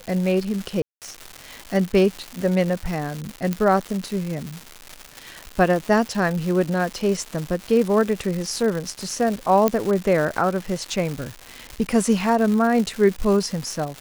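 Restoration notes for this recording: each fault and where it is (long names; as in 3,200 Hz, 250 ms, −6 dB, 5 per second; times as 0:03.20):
surface crackle 350 per second −26 dBFS
0:00.82–0:01.02: drop-out 198 ms
0:03.53: click −10 dBFS
0:09.68: click −5 dBFS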